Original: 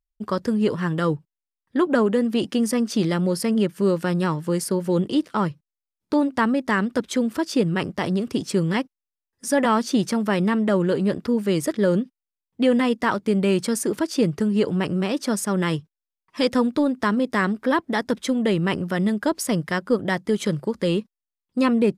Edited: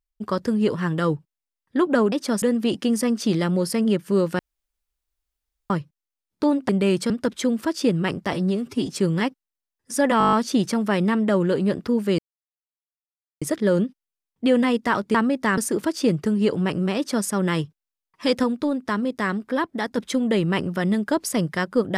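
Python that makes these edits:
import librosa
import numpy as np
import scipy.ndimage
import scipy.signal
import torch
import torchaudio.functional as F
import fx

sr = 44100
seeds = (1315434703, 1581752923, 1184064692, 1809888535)

y = fx.edit(x, sr, fx.room_tone_fill(start_s=4.09, length_s=1.31),
    fx.swap(start_s=6.39, length_s=0.43, other_s=13.31, other_length_s=0.41),
    fx.stretch_span(start_s=8.05, length_s=0.37, factor=1.5),
    fx.stutter(start_s=9.72, slice_s=0.02, count=8),
    fx.insert_silence(at_s=11.58, length_s=1.23),
    fx.duplicate(start_s=15.11, length_s=0.3, to_s=2.12),
    fx.clip_gain(start_s=16.58, length_s=1.54, db=-3.0), tone=tone)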